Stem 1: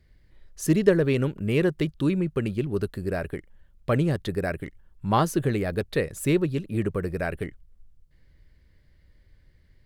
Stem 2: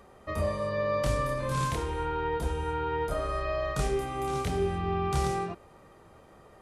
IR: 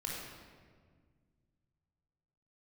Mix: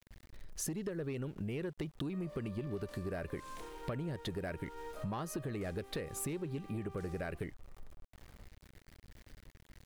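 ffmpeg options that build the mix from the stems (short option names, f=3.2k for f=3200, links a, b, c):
-filter_complex "[0:a]acompressor=threshold=-25dB:ratio=6,asoftclip=type=tanh:threshold=-21dB,volume=1.5dB[a];[1:a]highpass=f=230:w=0.5412,highpass=f=230:w=1.3066,aeval=exprs='0.0668*(abs(mod(val(0)/0.0668+3,4)-2)-1)':c=same,adelay=1850,volume=-14.5dB[b];[a][b]amix=inputs=2:normalize=0,aeval=exprs='val(0)*gte(abs(val(0)),0.00237)':c=same,acompressor=threshold=-38dB:ratio=4"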